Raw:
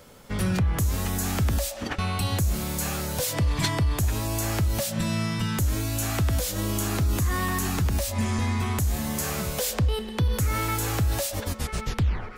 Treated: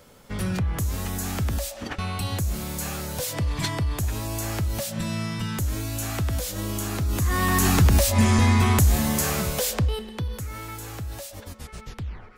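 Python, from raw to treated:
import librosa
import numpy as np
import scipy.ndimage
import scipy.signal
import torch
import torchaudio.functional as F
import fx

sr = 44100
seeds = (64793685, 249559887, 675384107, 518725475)

y = fx.gain(x, sr, db=fx.line((7.04, -2.0), (7.67, 7.5), (8.76, 7.5), (9.79, 1.0), (10.49, -9.5)))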